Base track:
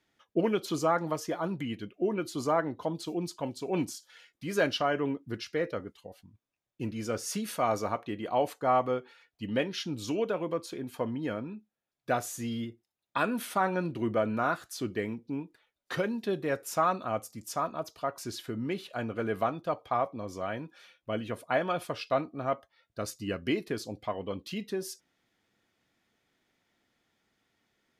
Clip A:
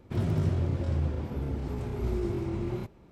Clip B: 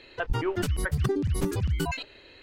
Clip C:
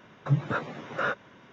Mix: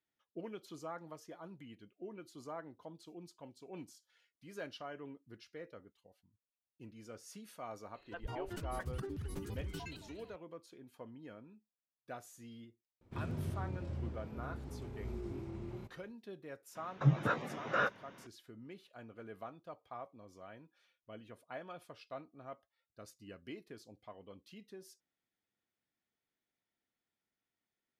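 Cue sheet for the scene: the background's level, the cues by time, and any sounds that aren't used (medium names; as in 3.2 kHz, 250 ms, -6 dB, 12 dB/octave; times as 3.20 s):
base track -18 dB
7.94 s: add B -16 dB + modulated delay 227 ms, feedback 53%, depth 211 cents, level -11.5 dB
13.01 s: add A -12.5 dB
16.75 s: add C -3.5 dB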